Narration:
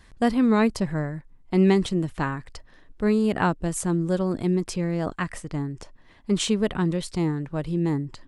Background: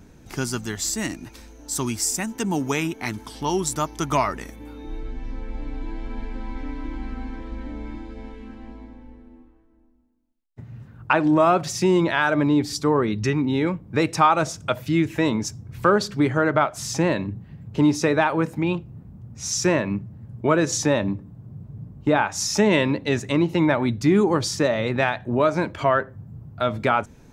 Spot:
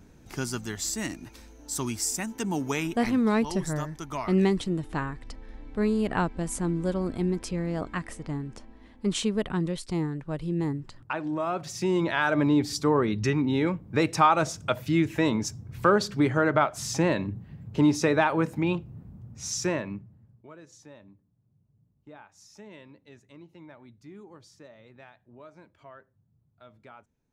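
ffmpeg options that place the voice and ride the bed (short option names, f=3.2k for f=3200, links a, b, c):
-filter_complex "[0:a]adelay=2750,volume=-4dB[a];[1:a]volume=4.5dB,afade=t=out:st=2.92:d=0.41:silence=0.421697,afade=t=in:st=11.46:d=0.98:silence=0.334965,afade=t=out:st=19.09:d=1.38:silence=0.0501187[b];[a][b]amix=inputs=2:normalize=0"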